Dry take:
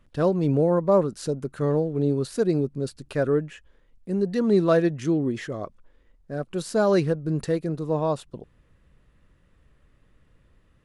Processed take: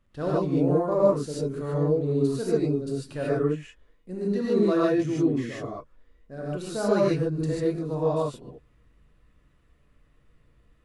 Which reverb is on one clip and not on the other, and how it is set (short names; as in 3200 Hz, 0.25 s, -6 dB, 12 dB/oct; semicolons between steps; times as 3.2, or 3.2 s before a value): non-linear reverb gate 0.17 s rising, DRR -6.5 dB; gain -9 dB